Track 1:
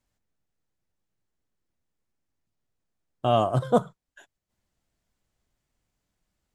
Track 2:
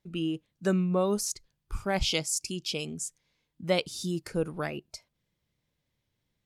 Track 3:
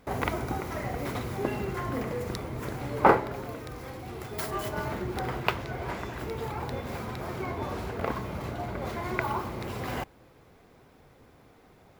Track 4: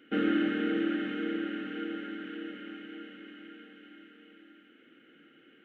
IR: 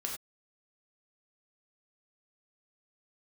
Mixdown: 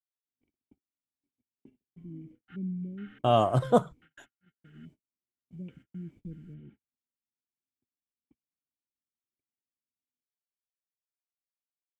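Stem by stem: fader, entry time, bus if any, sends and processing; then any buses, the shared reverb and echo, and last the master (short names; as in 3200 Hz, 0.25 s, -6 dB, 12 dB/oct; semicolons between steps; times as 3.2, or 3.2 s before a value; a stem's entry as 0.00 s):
-1.0 dB, 0.00 s, no send, dry
-7.0 dB, 1.90 s, no send, inverse Chebyshev low-pass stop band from 880 Hz, stop band 60 dB; de-hum 105 Hz, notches 30; auto duck -20 dB, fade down 0.20 s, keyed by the first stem
-18.0 dB, 0.20 s, no send, vocal tract filter i
-14.0 dB, 2.35 s, no send, elliptic high-pass 840 Hz; high shelf 2100 Hz -5.5 dB; step gate "x..x.xx.xxx" 72 bpm -60 dB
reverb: off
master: gate -53 dBFS, range -47 dB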